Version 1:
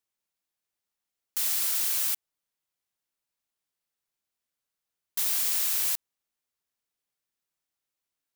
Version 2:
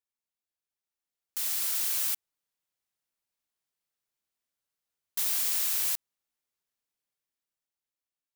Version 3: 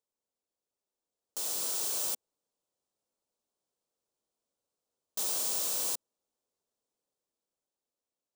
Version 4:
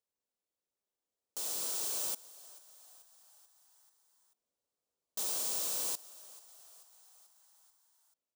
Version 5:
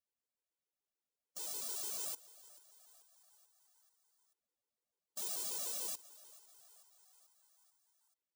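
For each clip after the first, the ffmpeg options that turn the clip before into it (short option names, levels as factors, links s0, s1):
-af "dynaudnorm=f=290:g=9:m=2.24,volume=0.376"
-af "equalizer=f=250:t=o:w=1:g=5,equalizer=f=500:t=o:w=1:g=11,equalizer=f=1000:t=o:w=1:g=3,equalizer=f=2000:t=o:w=1:g=-11,equalizer=f=8000:t=o:w=1:g=5,equalizer=f=16000:t=o:w=1:g=-10"
-filter_complex "[0:a]asplit=6[s0][s1][s2][s3][s4][s5];[s1]adelay=437,afreqshift=83,volume=0.106[s6];[s2]adelay=874,afreqshift=166,volume=0.0646[s7];[s3]adelay=1311,afreqshift=249,volume=0.0394[s8];[s4]adelay=1748,afreqshift=332,volume=0.024[s9];[s5]adelay=2185,afreqshift=415,volume=0.0146[s10];[s0][s6][s7][s8][s9][s10]amix=inputs=6:normalize=0,volume=0.708"
-af "afftfilt=real='re*gt(sin(2*PI*6.8*pts/sr)*(1-2*mod(floor(b*sr/1024/270),2)),0)':imag='im*gt(sin(2*PI*6.8*pts/sr)*(1-2*mod(floor(b*sr/1024/270),2)),0)':win_size=1024:overlap=0.75,volume=0.794"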